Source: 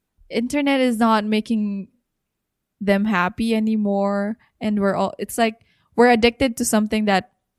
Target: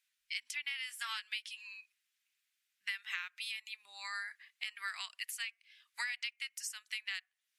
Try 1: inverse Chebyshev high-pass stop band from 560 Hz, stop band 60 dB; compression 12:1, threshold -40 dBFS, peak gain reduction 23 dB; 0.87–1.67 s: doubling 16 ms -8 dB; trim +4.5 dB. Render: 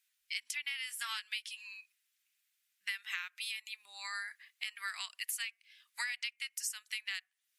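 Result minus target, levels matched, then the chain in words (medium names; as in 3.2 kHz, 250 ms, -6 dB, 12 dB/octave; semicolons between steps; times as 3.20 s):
8 kHz band +3.5 dB
inverse Chebyshev high-pass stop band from 560 Hz, stop band 60 dB; compression 12:1, threshold -40 dBFS, peak gain reduction 23 dB; treble shelf 8.2 kHz -9 dB; 0.87–1.67 s: doubling 16 ms -8 dB; trim +4.5 dB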